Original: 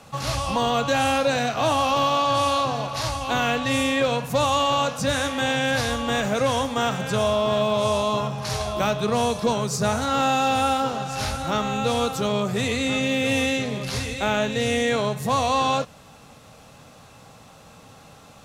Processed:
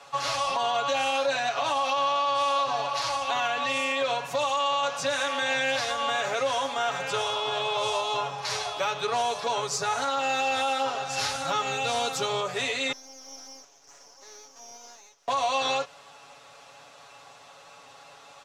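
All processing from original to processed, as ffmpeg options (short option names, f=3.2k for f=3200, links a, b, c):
-filter_complex "[0:a]asettb=1/sr,asplit=3[a][b][c];[a]atrim=end=11.094[d];[b]atrim=start=11.09:end=12.41,asetpts=PTS-STARTPTS,afade=t=in:d=0.004:c=qsin,afade=t=out:st=1.316:d=0.004:c=qsin,highpass=f=170:p=1,bass=f=250:g=11,treble=f=4k:g=5[e];[c]atrim=start=12.406[f];[d][e]acrossfade=d=0.004:c1=hsin:c2=qsin[g];[g][f]acrossfade=d=0.004:c1=qsin:c2=hsin,asettb=1/sr,asplit=3[h][i][j];[h]atrim=end=12.924[k];[i]atrim=start=12.92:end=15.28,asetpts=PTS-STARTPTS,afade=t=in:d=0.004:c=qsin,afade=t=out:st=2.356:d=0.004:c=qsin,bandpass=f=3k:t=q:w=14,aeval=exprs='abs(val(0))':c=same[l];[j]atrim=start=15.276[m];[k][l]acrossfade=d=0.004:c1=hsin:c2=qsin[n];[n][m]acrossfade=d=0.004:c1=qsin:c2=hsin,acrossover=split=470 7800:gain=0.1 1 0.2[o][p][q];[o][p][q]amix=inputs=3:normalize=0,aecho=1:1:7.1:0.91,alimiter=limit=-16.5dB:level=0:latency=1:release=85,volume=-1.5dB"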